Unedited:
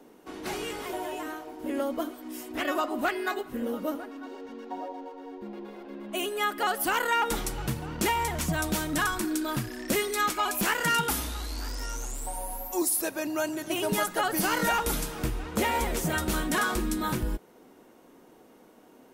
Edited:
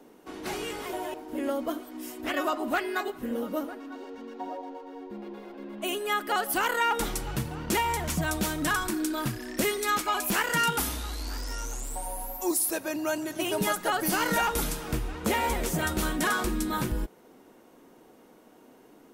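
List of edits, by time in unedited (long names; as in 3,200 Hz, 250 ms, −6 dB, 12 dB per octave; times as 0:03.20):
0:01.14–0:01.45: remove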